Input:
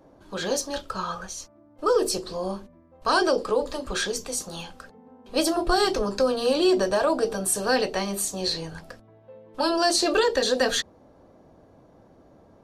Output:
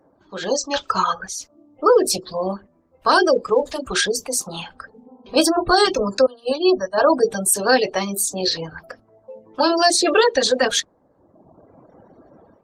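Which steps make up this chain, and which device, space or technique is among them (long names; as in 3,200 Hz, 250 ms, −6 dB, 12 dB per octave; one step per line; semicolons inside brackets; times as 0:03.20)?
0:00.71–0:01.13: graphic EQ with 15 bands 1,000 Hz +5 dB, 2,500 Hz +7 dB, 6,300 Hz +10 dB
0:04.74–0:05.69: low-shelf EQ 140 Hz +5 dB
0:06.26–0:06.98: downward expander −15 dBFS
reverb reduction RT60 1.3 s
noise-suppressed video call (high-pass filter 150 Hz 6 dB per octave; gate on every frequency bin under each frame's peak −30 dB strong; automatic gain control gain up to 12 dB; level −2 dB; Opus 20 kbit/s 48,000 Hz)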